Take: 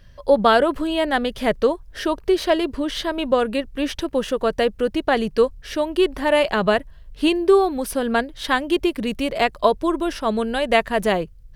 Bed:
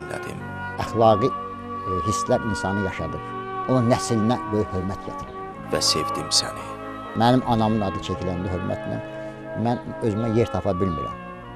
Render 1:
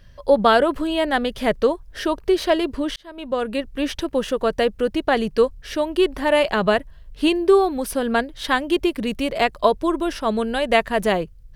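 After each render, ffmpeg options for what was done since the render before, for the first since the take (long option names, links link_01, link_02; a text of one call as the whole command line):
ffmpeg -i in.wav -filter_complex "[0:a]asplit=2[link_01][link_02];[link_01]atrim=end=2.96,asetpts=PTS-STARTPTS,afade=type=out:start_time=2.956:duration=0.004:curve=hsin[link_03];[link_02]atrim=start=2.96,asetpts=PTS-STARTPTS,afade=type=in:duration=0.71[link_04];[link_03][link_04]concat=n=2:v=0:a=1" out.wav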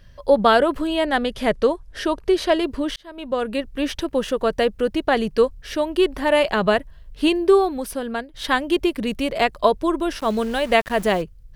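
ffmpeg -i in.wav -filter_complex "[0:a]asettb=1/sr,asplit=3[link_01][link_02][link_03];[link_01]atrim=end=0.974[link_04];[link_02]atrim=start=0.97:end=2.63,asetpts=PTS-STARTPTS,afade=type=in:duration=0.004:curve=qsin,afade=type=out:start_time=1.656:duration=0.004:curve=qsin,lowpass=frequency=12000:width=0.5412,lowpass=frequency=12000:width=1.3066[link_05];[link_03]atrim=start=2.626[link_06];[link_04][link_05]acrossfade=duration=0.004:curve1=hsin:curve2=qsin[link_07];[link_07][link_06]acrossfade=duration=0.004:curve1=qsin:curve2=hsin,asettb=1/sr,asplit=3[link_08][link_09][link_10];[link_08]atrim=end=10.194[link_11];[link_09]atrim=start=10.19:end=11.22,asetpts=PTS-STARTPTS,afade=type=in:duration=0.004:curve=qsin,afade=type=out:start_time=1.026:duration=0.004:curve=qsin,aeval=exprs='val(0)*gte(abs(val(0)),0.0188)':channel_layout=same[link_12];[link_10]atrim=start=11.216[link_13];[link_11][link_12]acrossfade=duration=0.004:curve1=hsin:curve2=qsin[link_14];[link_14][link_13]acrossfade=duration=0.004:curve1=qsin:curve2=hsin,asplit=2[link_15][link_16];[link_15]atrim=end=8.34,asetpts=PTS-STARTPTS,afade=type=out:start_time=7.52:duration=0.82:silence=0.298538[link_17];[link_16]atrim=start=8.34,asetpts=PTS-STARTPTS,afade=type=in:duration=0.004:curve=hsin:silence=0.298538[link_18];[link_17][link_18]concat=n=2:v=0:a=1" out.wav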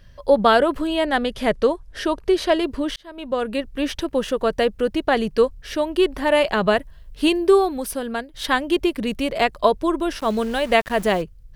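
ffmpeg -i in.wav -filter_complex "[0:a]asettb=1/sr,asplit=3[link_01][link_02][link_03];[link_01]atrim=end=6.774[link_04];[link_02]atrim=start=6.77:end=8.46,asetpts=PTS-STARTPTS,afade=type=in:duration=0.004:curve=qsin,afade=type=out:start_time=1.686:duration=0.004:curve=qsin,highshelf=frequency=5900:gain=5[link_05];[link_03]atrim=start=8.456[link_06];[link_04][link_05]acrossfade=duration=0.004:curve1=hsin:curve2=qsin[link_07];[link_07][link_06]acrossfade=duration=0.004:curve1=qsin:curve2=hsin" out.wav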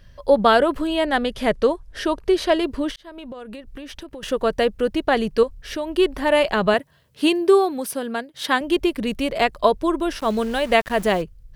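ffmpeg -i in.wav -filter_complex "[0:a]asettb=1/sr,asplit=3[link_01][link_02][link_03];[link_01]atrim=end=2.914[link_04];[link_02]atrim=start=2.91:end=4.23,asetpts=PTS-STARTPTS,afade=type=in:duration=0.004:curve=qsin,afade=type=out:start_time=1.316:duration=0.004:curve=qsin,acompressor=threshold=-32dB:ratio=12:attack=3.2:release=140:knee=1:detection=peak[link_05];[link_03]atrim=start=4.226[link_06];[link_04][link_05]acrossfade=duration=0.004:curve1=hsin:curve2=qsin[link_07];[link_07][link_06]acrossfade=duration=0.004:curve1=qsin:curve2=hsin,asettb=1/sr,asplit=3[link_08][link_09][link_10];[link_08]atrim=end=5.434[link_11];[link_09]atrim=start=5.43:end=5.92,asetpts=PTS-STARTPTS,afade=type=in:duration=0.004:curve=qsin,afade=type=out:start_time=0.486:duration=0.004:curve=qsin,acompressor=threshold=-23dB:ratio=3:attack=3.2:release=140:knee=1:detection=peak[link_12];[link_10]atrim=start=5.916[link_13];[link_11][link_12]acrossfade=duration=0.004:curve1=hsin:curve2=qsin[link_14];[link_14][link_13]acrossfade=duration=0.004:curve1=qsin:curve2=hsin,asettb=1/sr,asplit=3[link_15][link_16][link_17];[link_15]atrim=end=6.744[link_18];[link_16]atrim=start=6.74:end=8.61,asetpts=PTS-STARTPTS,afade=type=in:duration=0.004:curve=qsin,afade=type=out:start_time=1.866:duration=0.004:curve=qsin,highpass=frequency=110:width=0.5412,highpass=frequency=110:width=1.3066[link_19];[link_17]atrim=start=8.606[link_20];[link_18][link_19]acrossfade=duration=0.004:curve1=hsin:curve2=qsin[link_21];[link_21][link_20]acrossfade=duration=0.004:curve1=qsin:curve2=hsin" out.wav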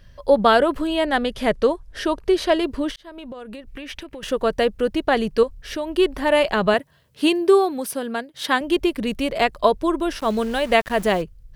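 ffmpeg -i in.wav -filter_complex "[0:a]asettb=1/sr,asplit=3[link_01][link_02][link_03];[link_01]atrim=end=3.674[link_04];[link_02]atrim=start=3.67:end=4.23,asetpts=PTS-STARTPTS,afade=type=in:duration=0.004:curve=qsin,afade=type=out:start_time=0.556:duration=0.004:curve=qsin,equalizer=frequency=2300:width_type=o:width=0.77:gain=9[link_05];[link_03]atrim=start=4.226[link_06];[link_04][link_05]acrossfade=duration=0.004:curve1=hsin:curve2=qsin[link_07];[link_07][link_06]acrossfade=duration=0.004:curve1=qsin:curve2=hsin" out.wav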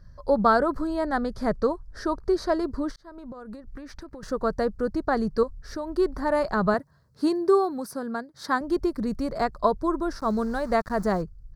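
ffmpeg -i in.wav -af "firequalizer=gain_entry='entry(180,0);entry(270,-4);entry(550,-7);entry(1300,-1);entry(2900,-30);entry(4400,-5);entry(9900,-13)':delay=0.05:min_phase=1" out.wav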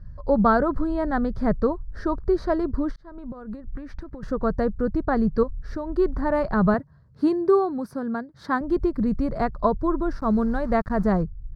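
ffmpeg -i in.wav -af "bass=frequency=250:gain=9,treble=frequency=4000:gain=-14" out.wav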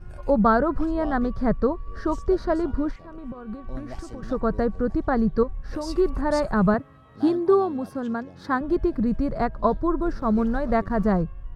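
ffmpeg -i in.wav -i bed.wav -filter_complex "[1:a]volume=-20.5dB[link_01];[0:a][link_01]amix=inputs=2:normalize=0" out.wav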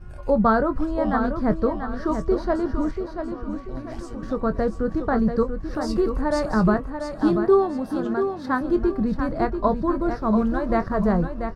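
ffmpeg -i in.wav -filter_complex "[0:a]asplit=2[link_01][link_02];[link_02]adelay=23,volume=-11.5dB[link_03];[link_01][link_03]amix=inputs=2:normalize=0,asplit=2[link_04][link_05];[link_05]aecho=0:1:687|1374|2061|2748:0.422|0.135|0.0432|0.0138[link_06];[link_04][link_06]amix=inputs=2:normalize=0" out.wav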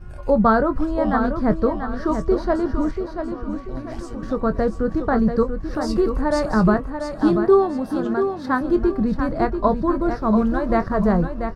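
ffmpeg -i in.wav -af "volume=2.5dB" out.wav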